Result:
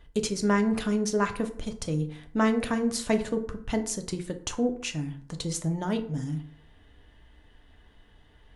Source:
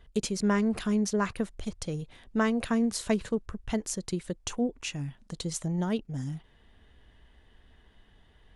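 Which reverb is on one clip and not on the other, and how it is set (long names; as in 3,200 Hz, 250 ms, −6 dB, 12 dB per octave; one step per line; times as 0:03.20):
feedback delay network reverb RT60 0.58 s, low-frequency decay 1×, high-frequency decay 0.55×, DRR 5.5 dB
level +1.5 dB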